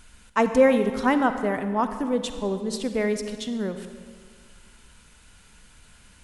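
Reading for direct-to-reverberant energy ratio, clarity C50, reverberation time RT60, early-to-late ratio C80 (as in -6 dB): 8.5 dB, 9.0 dB, 1.9 s, 10.0 dB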